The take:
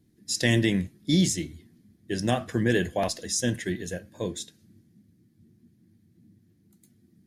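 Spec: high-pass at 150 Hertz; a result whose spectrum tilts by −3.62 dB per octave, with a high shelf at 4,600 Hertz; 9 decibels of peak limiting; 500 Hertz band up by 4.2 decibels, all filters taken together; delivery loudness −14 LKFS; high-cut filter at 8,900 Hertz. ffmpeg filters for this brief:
ffmpeg -i in.wav -af "highpass=150,lowpass=8900,equalizer=frequency=500:width_type=o:gain=5.5,highshelf=frequency=4600:gain=7,volume=14.5dB,alimiter=limit=-2dB:level=0:latency=1" out.wav

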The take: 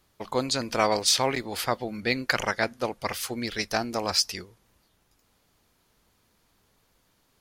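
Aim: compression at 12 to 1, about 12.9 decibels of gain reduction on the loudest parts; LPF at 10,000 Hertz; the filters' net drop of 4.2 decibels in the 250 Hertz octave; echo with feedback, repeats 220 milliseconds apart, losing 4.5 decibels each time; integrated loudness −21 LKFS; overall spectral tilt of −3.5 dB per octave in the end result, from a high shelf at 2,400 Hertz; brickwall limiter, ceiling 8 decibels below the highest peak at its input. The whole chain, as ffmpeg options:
ffmpeg -i in.wav -af "lowpass=10000,equalizer=frequency=250:width_type=o:gain=-5,highshelf=frequency=2400:gain=-8,acompressor=threshold=-33dB:ratio=12,alimiter=level_in=2.5dB:limit=-24dB:level=0:latency=1,volume=-2.5dB,aecho=1:1:220|440|660|880|1100|1320|1540|1760|1980:0.596|0.357|0.214|0.129|0.0772|0.0463|0.0278|0.0167|0.01,volume=17.5dB" out.wav

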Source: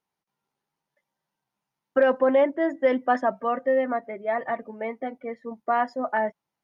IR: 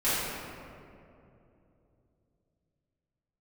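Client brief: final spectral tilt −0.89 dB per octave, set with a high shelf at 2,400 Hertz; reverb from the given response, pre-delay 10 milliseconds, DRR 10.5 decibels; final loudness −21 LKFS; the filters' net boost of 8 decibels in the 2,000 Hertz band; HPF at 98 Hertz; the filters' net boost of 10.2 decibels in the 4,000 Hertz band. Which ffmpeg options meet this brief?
-filter_complex "[0:a]highpass=98,equalizer=frequency=2000:width_type=o:gain=6,highshelf=frequency=2400:gain=6,equalizer=frequency=4000:width_type=o:gain=6.5,asplit=2[link_01][link_02];[1:a]atrim=start_sample=2205,adelay=10[link_03];[link_02][link_03]afir=irnorm=-1:irlink=0,volume=-23.5dB[link_04];[link_01][link_04]amix=inputs=2:normalize=0,volume=1.5dB"

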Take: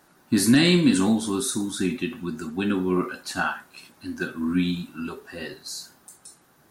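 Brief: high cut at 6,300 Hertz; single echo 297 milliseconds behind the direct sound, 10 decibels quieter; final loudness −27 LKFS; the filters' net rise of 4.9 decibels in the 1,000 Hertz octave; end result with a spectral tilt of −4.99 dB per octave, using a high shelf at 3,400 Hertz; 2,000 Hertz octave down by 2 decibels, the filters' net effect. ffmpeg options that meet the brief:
ffmpeg -i in.wav -af "lowpass=6300,equalizer=frequency=1000:width_type=o:gain=8.5,equalizer=frequency=2000:width_type=o:gain=-8,highshelf=frequency=3400:gain=4,aecho=1:1:297:0.316,volume=-3.5dB" out.wav

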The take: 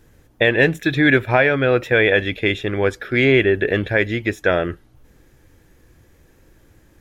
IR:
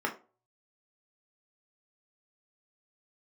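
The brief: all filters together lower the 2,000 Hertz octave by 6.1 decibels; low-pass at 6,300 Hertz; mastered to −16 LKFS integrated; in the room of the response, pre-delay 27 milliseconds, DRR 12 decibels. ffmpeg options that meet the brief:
-filter_complex "[0:a]lowpass=6300,equalizer=frequency=2000:width_type=o:gain=-7.5,asplit=2[link_01][link_02];[1:a]atrim=start_sample=2205,adelay=27[link_03];[link_02][link_03]afir=irnorm=-1:irlink=0,volume=-20dB[link_04];[link_01][link_04]amix=inputs=2:normalize=0,volume=3dB"

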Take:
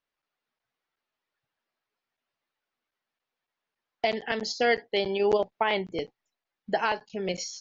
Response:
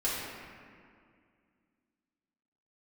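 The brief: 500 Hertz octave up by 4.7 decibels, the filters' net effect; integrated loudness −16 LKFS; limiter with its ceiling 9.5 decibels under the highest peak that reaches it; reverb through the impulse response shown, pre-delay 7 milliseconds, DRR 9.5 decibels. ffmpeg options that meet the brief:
-filter_complex "[0:a]equalizer=frequency=500:width_type=o:gain=6,alimiter=limit=-19dB:level=0:latency=1,asplit=2[link_01][link_02];[1:a]atrim=start_sample=2205,adelay=7[link_03];[link_02][link_03]afir=irnorm=-1:irlink=0,volume=-17.5dB[link_04];[link_01][link_04]amix=inputs=2:normalize=0,volume=13dB"

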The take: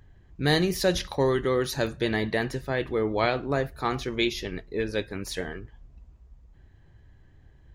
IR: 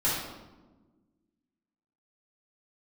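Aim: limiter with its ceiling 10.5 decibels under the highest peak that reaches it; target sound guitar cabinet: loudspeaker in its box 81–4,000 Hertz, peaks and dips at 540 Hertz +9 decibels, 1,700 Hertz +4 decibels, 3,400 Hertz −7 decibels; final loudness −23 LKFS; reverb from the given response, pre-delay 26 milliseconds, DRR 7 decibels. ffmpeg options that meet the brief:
-filter_complex "[0:a]alimiter=limit=-20dB:level=0:latency=1,asplit=2[link_01][link_02];[1:a]atrim=start_sample=2205,adelay=26[link_03];[link_02][link_03]afir=irnorm=-1:irlink=0,volume=-18dB[link_04];[link_01][link_04]amix=inputs=2:normalize=0,highpass=81,equalizer=frequency=540:width_type=q:width=4:gain=9,equalizer=frequency=1700:width_type=q:width=4:gain=4,equalizer=frequency=3400:width_type=q:width=4:gain=-7,lowpass=frequency=4000:width=0.5412,lowpass=frequency=4000:width=1.3066,volume=5dB"

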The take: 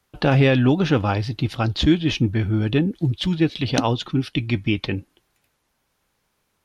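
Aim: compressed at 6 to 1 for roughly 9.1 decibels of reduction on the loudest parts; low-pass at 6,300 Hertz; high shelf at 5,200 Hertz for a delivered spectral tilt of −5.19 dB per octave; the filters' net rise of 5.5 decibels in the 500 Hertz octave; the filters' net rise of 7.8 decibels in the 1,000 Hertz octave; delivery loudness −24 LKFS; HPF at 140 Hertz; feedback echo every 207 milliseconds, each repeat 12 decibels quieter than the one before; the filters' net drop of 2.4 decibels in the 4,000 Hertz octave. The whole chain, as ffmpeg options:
ffmpeg -i in.wav -af "highpass=140,lowpass=6300,equalizer=frequency=500:width_type=o:gain=5,equalizer=frequency=1000:width_type=o:gain=8.5,equalizer=frequency=4000:width_type=o:gain=-5.5,highshelf=frequency=5200:gain=5.5,acompressor=threshold=-19dB:ratio=6,aecho=1:1:207|414|621:0.251|0.0628|0.0157,volume=1dB" out.wav

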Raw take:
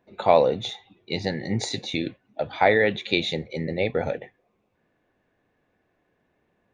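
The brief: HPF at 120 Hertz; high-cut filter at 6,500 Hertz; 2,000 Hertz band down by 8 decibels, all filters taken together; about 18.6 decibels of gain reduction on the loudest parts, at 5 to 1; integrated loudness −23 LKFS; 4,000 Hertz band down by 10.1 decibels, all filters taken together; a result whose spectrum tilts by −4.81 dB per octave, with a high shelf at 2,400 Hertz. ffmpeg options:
ffmpeg -i in.wav -af "highpass=120,lowpass=6500,equalizer=frequency=2000:width_type=o:gain=-5,highshelf=frequency=2400:gain=-7,equalizer=frequency=4000:width_type=o:gain=-4,acompressor=threshold=-34dB:ratio=5,volume=16dB" out.wav

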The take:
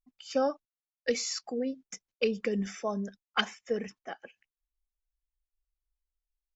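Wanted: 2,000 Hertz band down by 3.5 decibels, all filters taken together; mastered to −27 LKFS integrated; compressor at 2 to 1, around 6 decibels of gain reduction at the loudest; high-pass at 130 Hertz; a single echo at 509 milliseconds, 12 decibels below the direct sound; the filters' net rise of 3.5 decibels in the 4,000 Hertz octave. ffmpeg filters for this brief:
ffmpeg -i in.wav -af "highpass=130,equalizer=frequency=2000:width_type=o:gain=-7,equalizer=frequency=4000:width_type=o:gain=8,acompressor=threshold=-33dB:ratio=2,aecho=1:1:509:0.251,volume=9.5dB" out.wav

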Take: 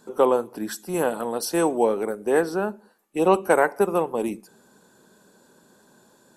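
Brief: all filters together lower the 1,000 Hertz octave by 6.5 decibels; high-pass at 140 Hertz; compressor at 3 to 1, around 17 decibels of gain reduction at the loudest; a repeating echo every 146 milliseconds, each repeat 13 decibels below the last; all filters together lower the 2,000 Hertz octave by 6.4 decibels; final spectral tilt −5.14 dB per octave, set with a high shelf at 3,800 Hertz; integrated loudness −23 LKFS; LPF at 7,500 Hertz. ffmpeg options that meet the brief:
ffmpeg -i in.wav -af "highpass=140,lowpass=7500,equalizer=frequency=1000:width_type=o:gain=-7.5,equalizer=frequency=2000:width_type=o:gain=-4,highshelf=frequency=3800:gain=-6.5,acompressor=threshold=-40dB:ratio=3,aecho=1:1:146|292|438:0.224|0.0493|0.0108,volume=17dB" out.wav

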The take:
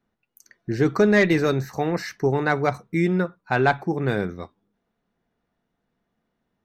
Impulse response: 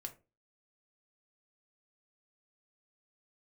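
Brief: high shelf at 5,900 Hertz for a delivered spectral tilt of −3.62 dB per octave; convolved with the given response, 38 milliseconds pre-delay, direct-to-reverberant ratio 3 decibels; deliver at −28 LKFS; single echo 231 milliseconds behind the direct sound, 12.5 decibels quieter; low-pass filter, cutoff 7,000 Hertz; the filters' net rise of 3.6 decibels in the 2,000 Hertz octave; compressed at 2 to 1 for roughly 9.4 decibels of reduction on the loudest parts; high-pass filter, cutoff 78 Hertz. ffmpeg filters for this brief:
-filter_complex "[0:a]highpass=78,lowpass=7000,equalizer=frequency=2000:width_type=o:gain=5,highshelf=frequency=5900:gain=-5.5,acompressor=threshold=-30dB:ratio=2,aecho=1:1:231:0.237,asplit=2[link_01][link_02];[1:a]atrim=start_sample=2205,adelay=38[link_03];[link_02][link_03]afir=irnorm=-1:irlink=0,volume=0.5dB[link_04];[link_01][link_04]amix=inputs=2:normalize=0,volume=-1dB"

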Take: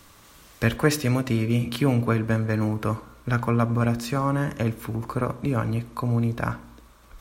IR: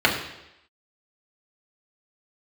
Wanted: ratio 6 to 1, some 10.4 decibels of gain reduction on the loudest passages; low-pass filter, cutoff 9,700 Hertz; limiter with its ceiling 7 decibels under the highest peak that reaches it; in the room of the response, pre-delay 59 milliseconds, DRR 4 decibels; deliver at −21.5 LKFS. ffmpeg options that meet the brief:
-filter_complex "[0:a]lowpass=9700,acompressor=threshold=-26dB:ratio=6,alimiter=limit=-21dB:level=0:latency=1,asplit=2[link_01][link_02];[1:a]atrim=start_sample=2205,adelay=59[link_03];[link_02][link_03]afir=irnorm=-1:irlink=0,volume=-24dB[link_04];[link_01][link_04]amix=inputs=2:normalize=0,volume=10.5dB"

